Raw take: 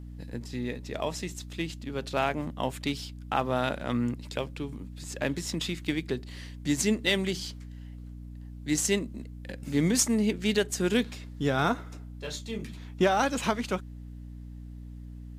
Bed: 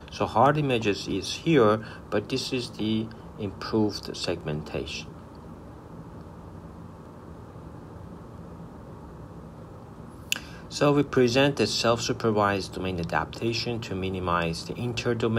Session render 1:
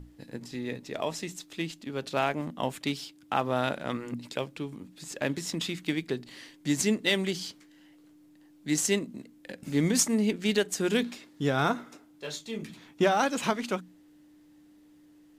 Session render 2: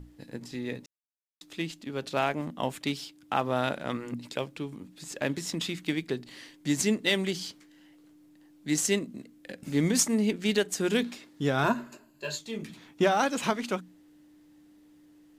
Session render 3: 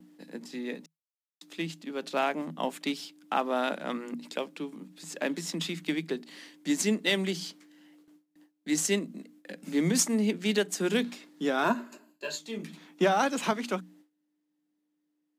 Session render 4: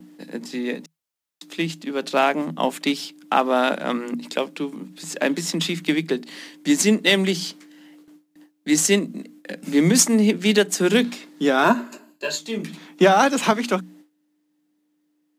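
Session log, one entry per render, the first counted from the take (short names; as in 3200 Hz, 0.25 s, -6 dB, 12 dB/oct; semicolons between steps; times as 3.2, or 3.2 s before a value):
notches 60/120/180/240 Hz
0.86–1.41 mute; 8.81–9.63 notch 900 Hz, Q 8.1; 11.63–12.38 ripple EQ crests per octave 1.4, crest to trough 13 dB
Chebyshev high-pass 160 Hz, order 8; gate with hold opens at -50 dBFS
gain +9.5 dB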